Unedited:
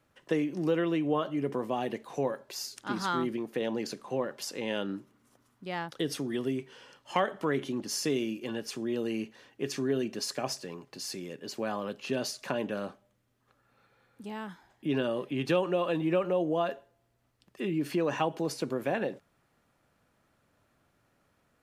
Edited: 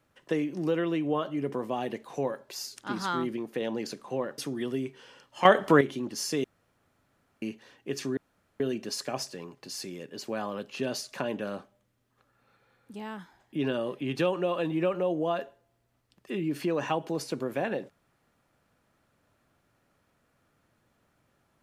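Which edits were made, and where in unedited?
0:04.38–0:06.11: remove
0:07.18–0:07.54: clip gain +10 dB
0:08.17–0:09.15: fill with room tone
0:09.90: splice in room tone 0.43 s

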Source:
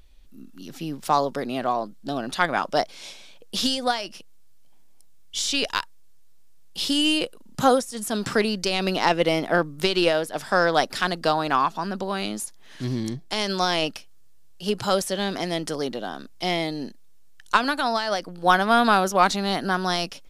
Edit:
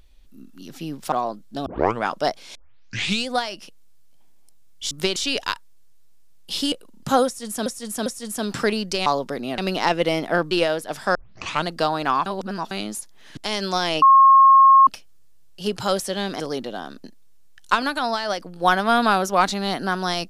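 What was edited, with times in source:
0:01.12–0:01.64: move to 0:08.78
0:02.18: tape start 0.38 s
0:03.07: tape start 0.73 s
0:06.99–0:07.24: remove
0:07.78–0:08.18: repeat, 3 plays
0:09.71–0:09.96: move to 0:05.43
0:10.60: tape start 0.52 s
0:11.71–0:12.16: reverse
0:12.82–0:13.24: remove
0:13.89: insert tone 1,080 Hz −8 dBFS 0.85 s
0:15.42–0:15.69: remove
0:16.33–0:16.86: remove

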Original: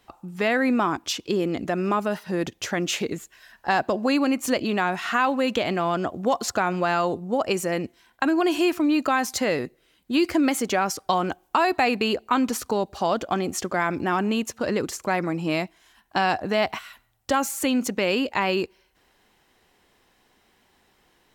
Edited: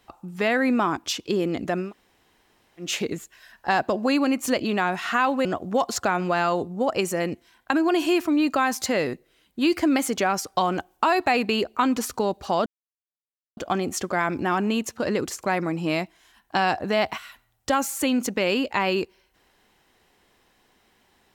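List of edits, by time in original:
0:01.85–0:02.85: fill with room tone, crossfade 0.16 s
0:05.45–0:05.97: remove
0:13.18: splice in silence 0.91 s

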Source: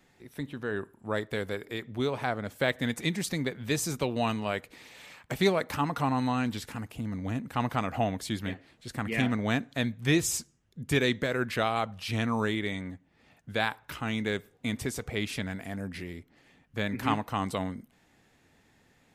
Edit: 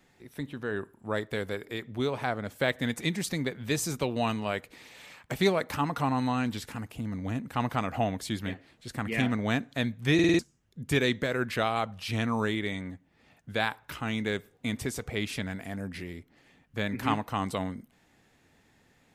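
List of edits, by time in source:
0:10.14: stutter in place 0.05 s, 5 plays

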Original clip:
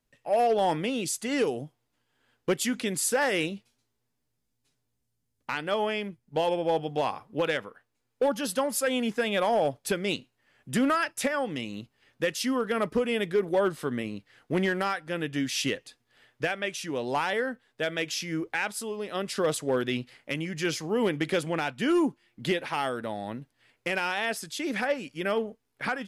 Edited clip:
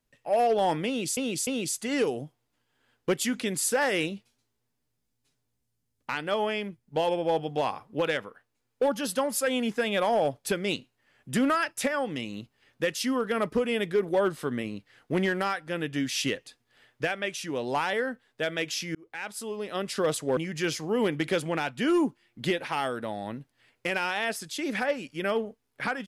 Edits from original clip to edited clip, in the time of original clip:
0:00.87–0:01.17: repeat, 3 plays
0:18.35–0:18.94: fade in linear
0:19.77–0:20.38: remove

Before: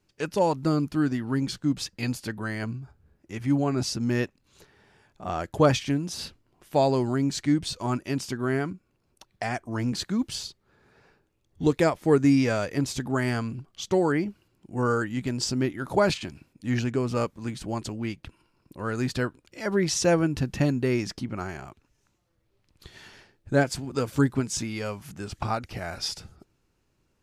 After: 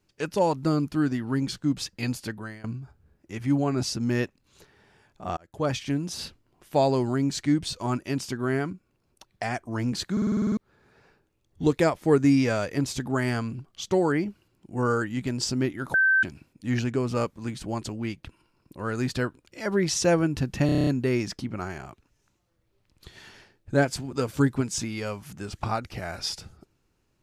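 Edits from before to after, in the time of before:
0:02.26–0:02.64: fade out, to −21 dB
0:05.37–0:06.02: fade in
0:10.12: stutter in place 0.05 s, 9 plays
0:15.94–0:16.23: beep over 1,550 Hz −17 dBFS
0:20.66: stutter 0.03 s, 8 plays

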